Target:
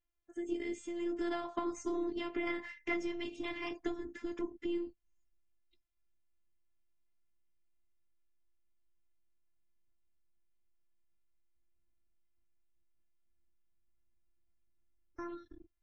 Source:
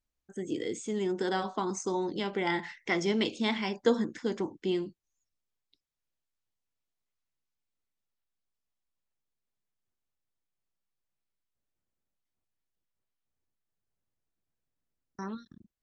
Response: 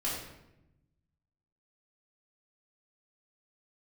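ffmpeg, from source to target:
-af "aeval=exprs='0.251*(cos(1*acos(clip(val(0)/0.251,-1,1)))-cos(1*PI/2))+0.00447*(cos(8*acos(clip(val(0)/0.251,-1,1)))-cos(8*PI/2))':channel_layout=same,asubboost=boost=4:cutoff=240,acompressor=threshold=-29dB:ratio=6,highshelf=frequency=3200:width_type=q:width=1.5:gain=-6.5,afftfilt=real='hypot(re,im)*cos(PI*b)':imag='0':win_size=512:overlap=0.75" -ar 48000 -c:a aac -b:a 32k

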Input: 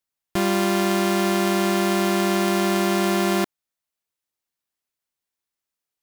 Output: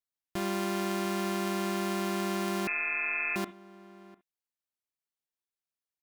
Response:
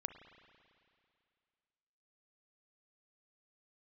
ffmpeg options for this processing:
-filter_complex "[0:a]asplit=2[link_01][link_02];[link_02]adelay=699.7,volume=-20dB,highshelf=frequency=4000:gain=-15.7[link_03];[link_01][link_03]amix=inputs=2:normalize=0[link_04];[1:a]atrim=start_sample=2205,atrim=end_sample=3969[link_05];[link_04][link_05]afir=irnorm=-1:irlink=0,asettb=1/sr,asplit=3[link_06][link_07][link_08];[link_06]atrim=end=2.674[link_09];[link_07]atrim=start=2.67:end=3.36,asetpts=PTS-STARTPTS,afade=type=in:duration=0.004:curve=qsin,afade=type=out:start_time=0.686:duration=0.004:curve=qsin,lowpass=frequency=2400:width_type=q:width=0.5098,lowpass=frequency=2400:width_type=q:width=0.6013,lowpass=frequency=2400:width_type=q:width=0.9,lowpass=frequency=2400:width_type=q:width=2.563,afreqshift=-2800[link_10];[link_08]atrim=start=3.356[link_11];[link_09][link_10]acrossfade=duration=0.004:curve1=hsin:curve2=qsin[link_12];[link_12][link_11]acrossfade=duration=0.004:curve1=qsin:curve2=hsin,volume=-8dB"

